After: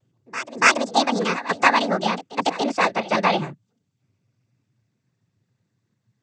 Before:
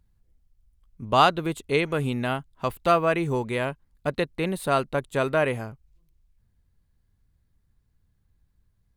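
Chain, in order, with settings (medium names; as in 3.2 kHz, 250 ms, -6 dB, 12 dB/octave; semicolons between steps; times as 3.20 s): gliding tape speed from 188% -> 100%; noise-vocoded speech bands 16; reverse echo 285 ms -15 dB; trim +4.5 dB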